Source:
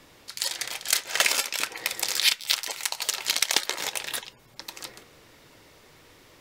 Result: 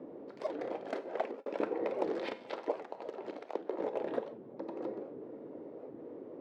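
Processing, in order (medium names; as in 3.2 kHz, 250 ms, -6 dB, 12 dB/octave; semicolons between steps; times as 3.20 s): 2.71–3.96 s: compression 6:1, threshold -30 dBFS, peak gain reduction 13.5 dB; Butterworth band-pass 360 Hz, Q 1.1; Schroeder reverb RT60 0.63 s, combs from 32 ms, DRR 12 dB; 0.84–1.46 s: fade out; warped record 78 rpm, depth 250 cents; trim +13 dB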